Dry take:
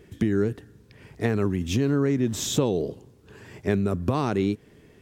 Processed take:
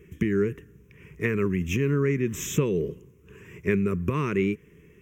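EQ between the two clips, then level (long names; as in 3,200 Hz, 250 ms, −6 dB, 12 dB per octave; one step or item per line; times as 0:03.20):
EQ curve with evenly spaced ripples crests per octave 0.77, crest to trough 8 dB
dynamic equaliser 1,900 Hz, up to +6 dB, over −44 dBFS, Q 1.2
phaser with its sweep stopped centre 1,900 Hz, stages 4
0.0 dB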